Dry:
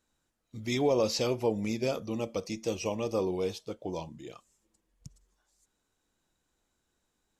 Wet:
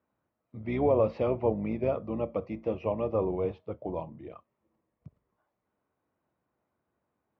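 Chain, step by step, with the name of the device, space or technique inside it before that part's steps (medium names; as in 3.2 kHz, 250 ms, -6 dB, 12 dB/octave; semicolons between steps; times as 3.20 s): sub-octave bass pedal (octave divider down 2 oct, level -3 dB; cabinet simulation 82–2100 Hz, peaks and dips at 620 Hz +6 dB, 1.1 kHz +4 dB, 1.6 kHz -6 dB)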